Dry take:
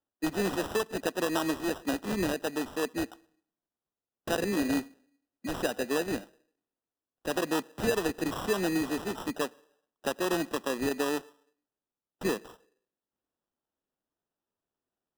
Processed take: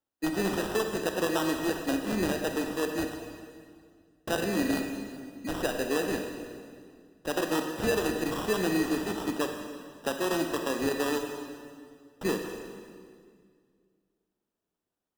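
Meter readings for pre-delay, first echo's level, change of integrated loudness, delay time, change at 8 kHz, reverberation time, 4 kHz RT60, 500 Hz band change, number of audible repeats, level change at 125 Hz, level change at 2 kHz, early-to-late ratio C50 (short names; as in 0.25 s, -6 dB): 27 ms, none, +1.0 dB, none, +1.5 dB, 2.0 s, 1.8 s, +1.5 dB, none, +2.0 dB, +1.5 dB, 5.0 dB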